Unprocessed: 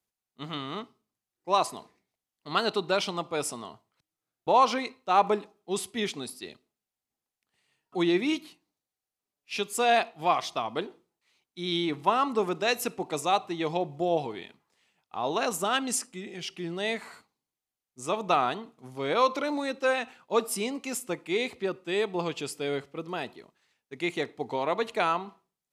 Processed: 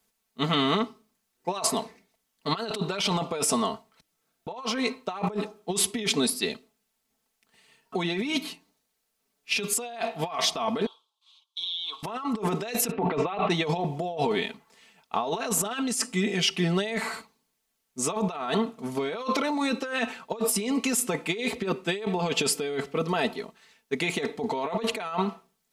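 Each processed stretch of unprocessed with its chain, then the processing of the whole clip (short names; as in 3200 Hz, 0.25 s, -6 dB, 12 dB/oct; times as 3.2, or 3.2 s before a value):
10.86–12.03 double band-pass 1900 Hz, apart 1.7 oct + tilt +4 dB/oct + compressor 8:1, threshold -41 dBFS
12.91–13.5 LPF 2900 Hz 24 dB/oct + notches 60/120/180 Hz + sustainer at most 140 dB/s
whole clip: comb 4.5 ms, depth 68%; negative-ratio compressor -34 dBFS, ratio -1; gain +5.5 dB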